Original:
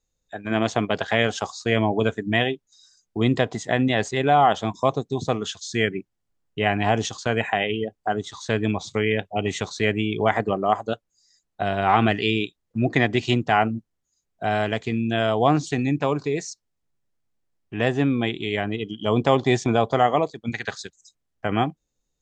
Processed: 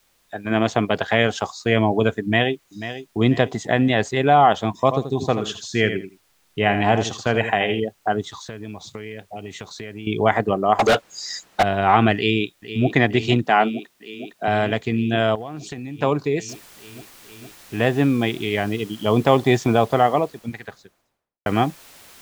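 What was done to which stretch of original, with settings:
2.22–3.18 echo throw 0.49 s, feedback 45%, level -12 dB
4.78–7.8 feedback echo 82 ms, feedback 17%, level -9.5 dB
8.37–10.07 compressor 5:1, threshold -34 dBFS
10.79–11.63 overdrive pedal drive 40 dB, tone 4900 Hz, clips at -10.5 dBFS
12.16–12.94 echo throw 0.46 s, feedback 85%, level -12 dB
13.45–14.48 HPF 190 Hz 24 dB/oct
15.35–15.99 compressor 10:1, threshold -31 dBFS
16.49 noise floor step -63 dB -46 dB
19.73–21.46 studio fade out
whole clip: high shelf 5700 Hz -6 dB; gain +3 dB

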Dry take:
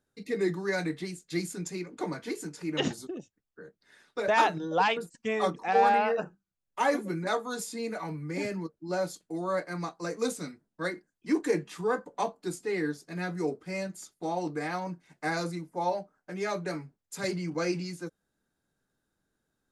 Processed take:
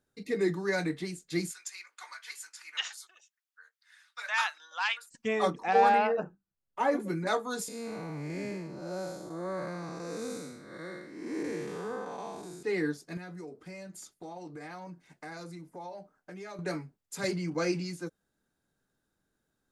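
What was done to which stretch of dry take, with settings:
1.51–5.11 HPF 1200 Hz 24 dB/oct
6.07–7 high shelf 2100 Hz -11.5 dB
7.68–12.63 time blur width 0.286 s
13.17–16.59 compressor 4:1, threshold -42 dBFS

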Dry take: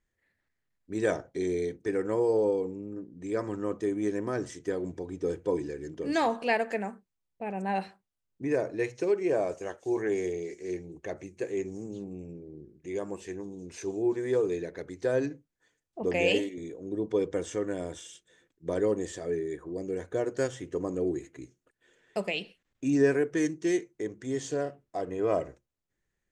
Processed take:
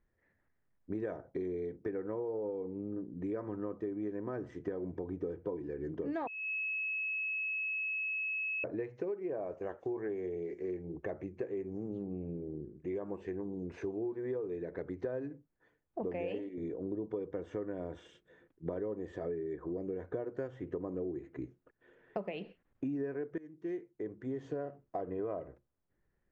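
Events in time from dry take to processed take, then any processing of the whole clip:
6.27–8.64 bleep 2580 Hz -22 dBFS
23.38–25.29 fade in, from -21.5 dB
whole clip: LPF 1400 Hz 12 dB/oct; compressor 10:1, threshold -39 dBFS; gain +4.5 dB

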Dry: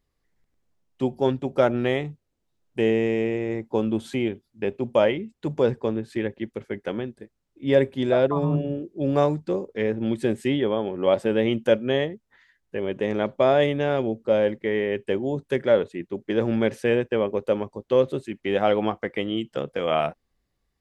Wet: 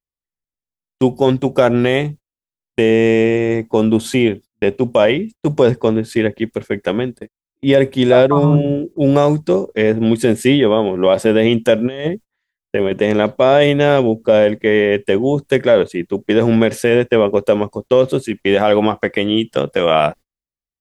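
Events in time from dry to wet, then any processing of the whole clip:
11.78–12.93 negative-ratio compressor -28 dBFS, ratio -0.5
whole clip: gate -41 dBFS, range -33 dB; high shelf 5400 Hz +9.5 dB; maximiser +12 dB; gain -1 dB

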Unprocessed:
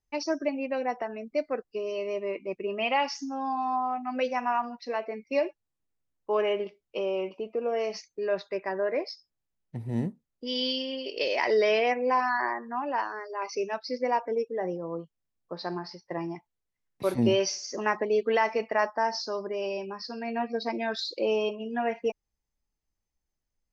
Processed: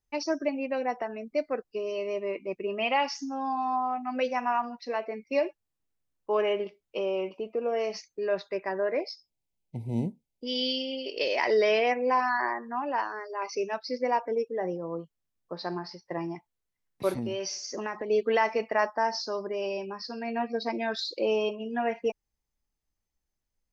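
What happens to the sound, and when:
9–11.07 brick-wall FIR band-stop 1000–2000 Hz
17.16–18.09 compressor 4:1, threshold -30 dBFS

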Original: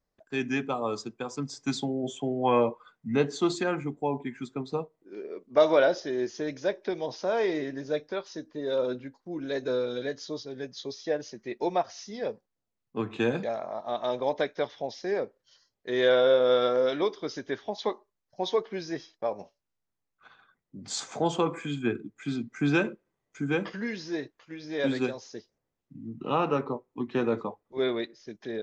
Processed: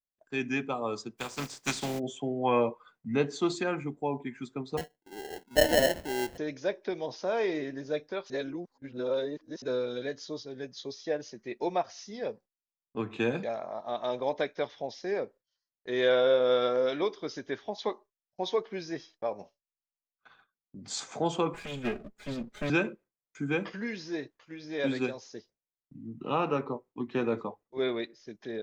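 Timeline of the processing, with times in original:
1.17–1.98 spectral contrast lowered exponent 0.43
4.77–6.38 sample-rate reducer 1200 Hz
8.3–9.62 reverse
21.54–22.7 minimum comb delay 4.8 ms
whole clip: gate with hold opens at -47 dBFS; dynamic EQ 2400 Hz, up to +4 dB, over -53 dBFS, Q 6.5; gain -2.5 dB

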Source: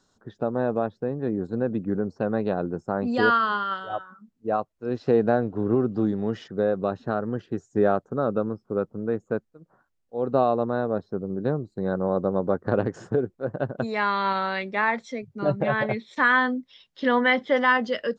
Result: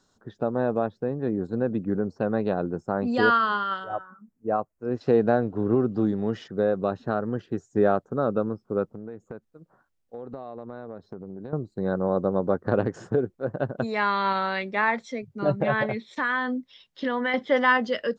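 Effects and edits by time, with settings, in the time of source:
3.84–5.01 bell 3700 Hz -14 dB 0.92 oct
8.86–11.53 compressor 12:1, threshold -33 dBFS
15.85–17.34 compressor 2.5:1, threshold -24 dBFS

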